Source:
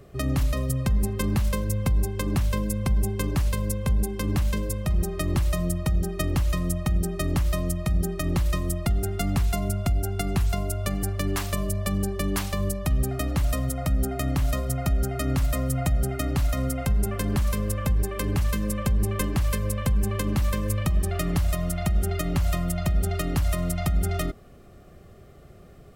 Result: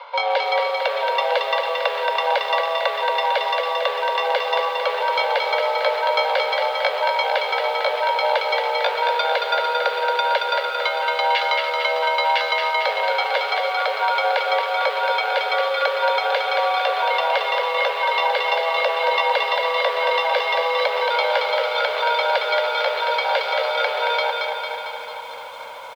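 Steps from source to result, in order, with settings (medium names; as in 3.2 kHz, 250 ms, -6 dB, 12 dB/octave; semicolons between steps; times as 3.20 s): treble shelf 2.2 kHz +10 dB; comb 2.5 ms, depth 54%; in parallel at +1.5 dB: compression 16:1, threshold -29 dBFS, peak gain reduction 15 dB; on the sum: pitch shift +7.5 st; short-mantissa float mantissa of 2-bit; on a send: feedback delay 225 ms, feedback 60%, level -4 dB; on the sum: mistuned SSB +340 Hz 200–3600 Hz; bit-crushed delay 298 ms, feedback 80%, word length 8-bit, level -13 dB; trim +5 dB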